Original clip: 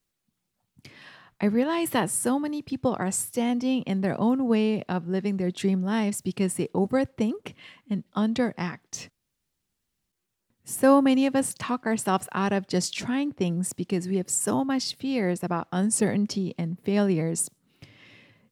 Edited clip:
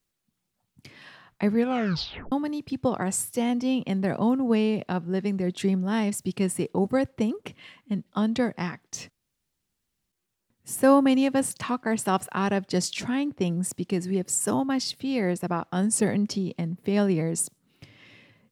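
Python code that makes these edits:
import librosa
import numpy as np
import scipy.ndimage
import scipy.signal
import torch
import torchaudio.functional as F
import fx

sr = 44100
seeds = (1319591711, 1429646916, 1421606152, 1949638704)

y = fx.edit(x, sr, fx.tape_stop(start_s=1.56, length_s=0.76), tone=tone)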